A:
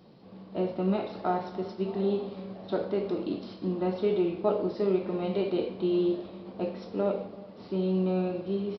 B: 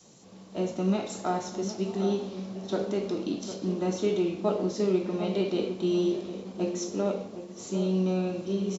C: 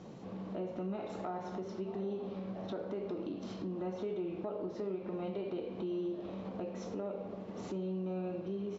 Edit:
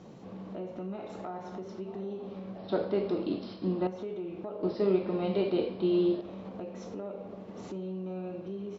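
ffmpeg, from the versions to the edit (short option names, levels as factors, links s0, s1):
-filter_complex "[0:a]asplit=2[s0][s1];[2:a]asplit=3[s2][s3][s4];[s2]atrim=end=2.582[s5];[s0]atrim=start=2.578:end=3.872[s6];[s3]atrim=start=3.868:end=4.632[s7];[s1]atrim=start=4.628:end=6.212[s8];[s4]atrim=start=6.208[s9];[s5][s6]acrossfade=d=0.004:c1=hsin:c2=hsin[s10];[s10][s7]acrossfade=d=0.004:c1=hsin:c2=hsin[s11];[s11][s8]acrossfade=d=0.004:c1=hsin:c2=hsin[s12];[s12][s9]acrossfade=d=0.004:c1=hsin:c2=hsin"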